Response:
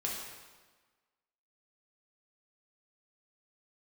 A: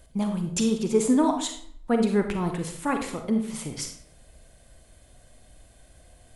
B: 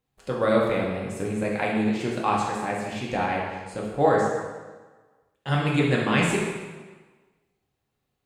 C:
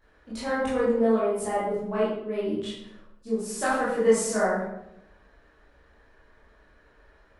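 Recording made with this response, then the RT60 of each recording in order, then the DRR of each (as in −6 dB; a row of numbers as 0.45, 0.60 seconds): B; 0.65, 1.4, 0.85 seconds; 4.5, −4.0, −10.5 decibels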